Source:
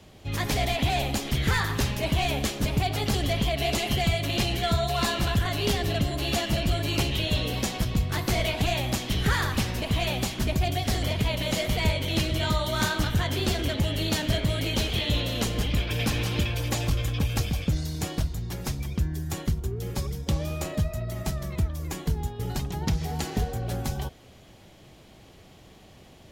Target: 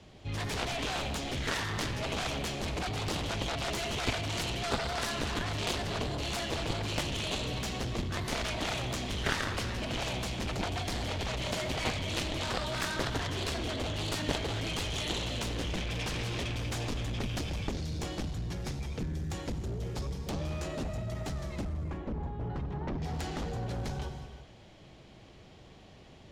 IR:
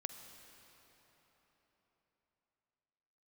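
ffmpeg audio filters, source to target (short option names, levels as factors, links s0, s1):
-filter_complex "[0:a]asetnsamples=n=441:p=0,asendcmd='21.65 lowpass f 1600;23.02 lowpass f 5900',lowpass=6700[s0];[1:a]atrim=start_sample=2205,afade=t=out:st=0.34:d=0.01,atrim=end_sample=15435,asetrate=34398,aresample=44100[s1];[s0][s1]afir=irnorm=-1:irlink=0,aeval=exprs='0.224*(cos(1*acos(clip(val(0)/0.224,-1,1)))-cos(1*PI/2))+0.1*(cos(3*acos(clip(val(0)/0.224,-1,1)))-cos(3*PI/2))+0.0158*(cos(7*acos(clip(val(0)/0.224,-1,1)))-cos(7*PI/2))':c=same"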